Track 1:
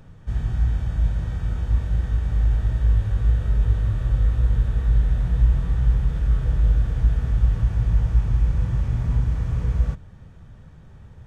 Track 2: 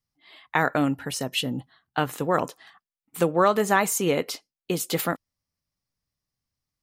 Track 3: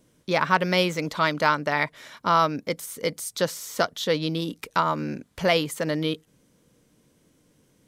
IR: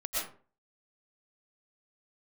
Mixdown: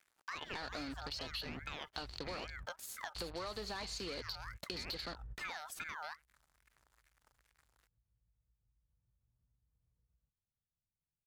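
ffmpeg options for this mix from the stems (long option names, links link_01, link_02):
-filter_complex "[0:a]acompressor=threshold=-24dB:ratio=6,lowpass=1700,adelay=350,volume=-19dB[link_01];[1:a]highpass=180,acrusher=bits=4:mix=0:aa=0.5,lowpass=frequency=4400:width_type=q:width=13,volume=1dB,asplit=2[link_02][link_03];[2:a]acrusher=bits=8:mix=0:aa=0.5,aeval=exprs='val(0)*sin(2*PI*1500*n/s+1500*0.3/2.4*sin(2*PI*2.4*n/s))':channel_layout=same,volume=-4.5dB[link_04];[link_03]apad=whole_len=512009[link_05];[link_01][link_05]sidechaingate=range=-34dB:threshold=-49dB:ratio=16:detection=peak[link_06];[link_02][link_04]amix=inputs=2:normalize=0,asoftclip=type=tanh:threshold=-13.5dB,acompressor=threshold=-36dB:ratio=3,volume=0dB[link_07];[link_06][link_07]amix=inputs=2:normalize=0,acompressor=threshold=-43dB:ratio=3"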